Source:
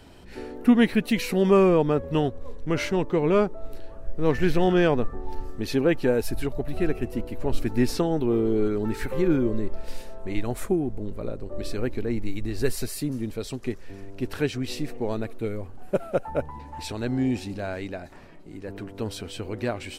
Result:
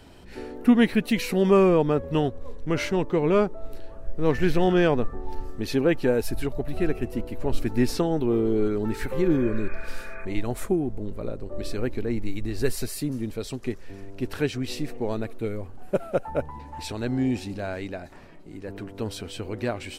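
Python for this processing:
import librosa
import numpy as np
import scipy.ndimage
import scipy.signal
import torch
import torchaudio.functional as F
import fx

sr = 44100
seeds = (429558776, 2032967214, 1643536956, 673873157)

y = fx.spec_repair(x, sr, seeds[0], start_s=9.32, length_s=0.9, low_hz=1100.0, high_hz=2500.0, source='before')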